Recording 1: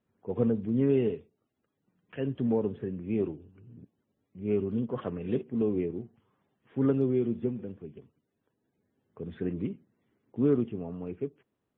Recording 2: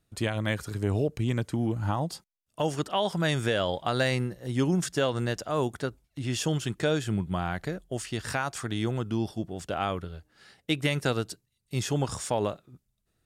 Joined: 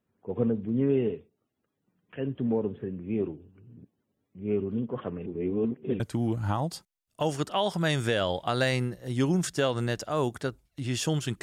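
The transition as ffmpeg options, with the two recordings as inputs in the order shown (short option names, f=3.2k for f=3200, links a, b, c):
-filter_complex "[0:a]apad=whole_dur=11.42,atrim=end=11.42,asplit=2[a][b];[a]atrim=end=5.262[c];[b]atrim=start=5.258:end=6.002,asetpts=PTS-STARTPTS,areverse[d];[1:a]atrim=start=1.388:end=6.81[e];[c][d]acrossfade=d=0.004:c1=hsin:c2=hsin[f];[f][e]acrossfade=d=0.004:c1=hsin:c2=hsin"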